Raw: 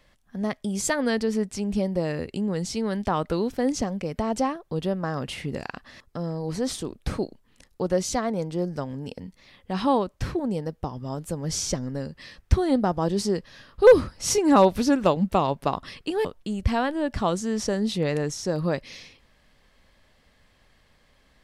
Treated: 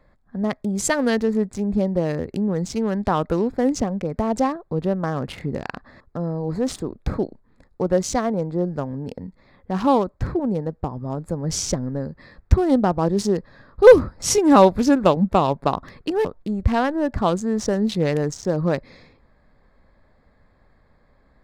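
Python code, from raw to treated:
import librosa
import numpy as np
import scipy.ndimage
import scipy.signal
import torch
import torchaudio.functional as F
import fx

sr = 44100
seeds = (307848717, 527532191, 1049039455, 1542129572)

y = fx.wiener(x, sr, points=15)
y = y * 10.0 ** (4.5 / 20.0)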